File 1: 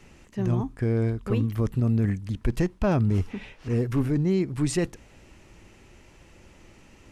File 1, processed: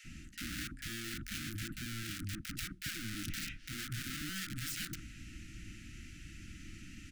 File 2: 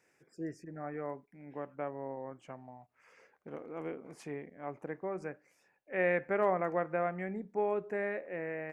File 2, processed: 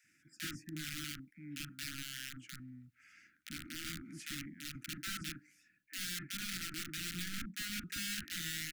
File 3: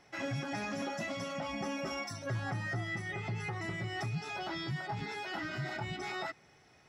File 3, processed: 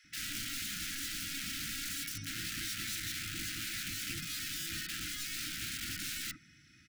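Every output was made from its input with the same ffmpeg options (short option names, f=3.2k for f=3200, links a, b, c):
-filter_complex "[0:a]areverse,acompressor=threshold=-33dB:ratio=16,areverse,aeval=exprs='(mod(70.8*val(0)+1,2)-1)/70.8':c=same,asuperstop=centerf=660:order=20:qfactor=0.66,acrossover=split=1300[a][b];[a]adelay=40[c];[c][b]amix=inputs=2:normalize=0,volume=3.5dB"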